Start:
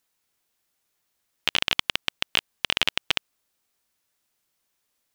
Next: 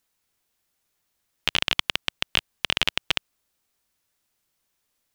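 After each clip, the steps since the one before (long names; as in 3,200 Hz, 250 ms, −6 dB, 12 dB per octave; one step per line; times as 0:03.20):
low-shelf EQ 130 Hz +6 dB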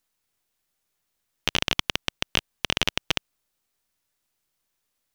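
gain on one half-wave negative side −7 dB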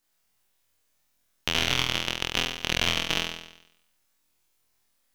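brickwall limiter −5.5 dBFS, peak gain reduction 3.5 dB
flutter between parallel walls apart 4.1 metres, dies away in 0.81 s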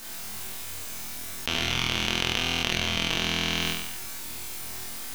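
convolution reverb, pre-delay 4 ms, DRR 4 dB
envelope flattener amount 100%
level −5.5 dB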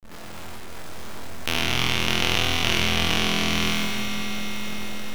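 peak hold with a decay on every bin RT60 2.23 s
slack as between gear wheels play −24.5 dBFS
echo that builds up and dies away 105 ms, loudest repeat 5, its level −14.5 dB
level +1.5 dB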